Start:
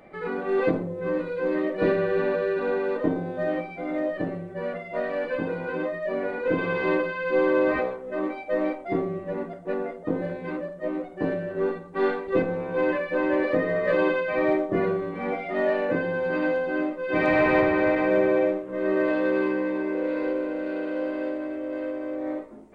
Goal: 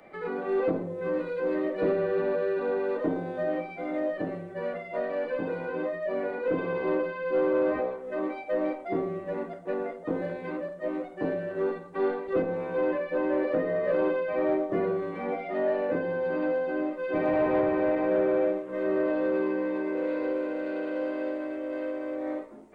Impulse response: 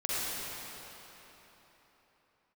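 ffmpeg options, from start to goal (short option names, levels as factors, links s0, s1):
-filter_complex "[0:a]lowshelf=f=220:g=-8,acrossover=split=200|390|940[s0][s1][s2][s3];[s3]acompressor=threshold=0.00794:ratio=6[s4];[s0][s1][s2][s4]amix=inputs=4:normalize=0,asoftclip=type=tanh:threshold=0.158"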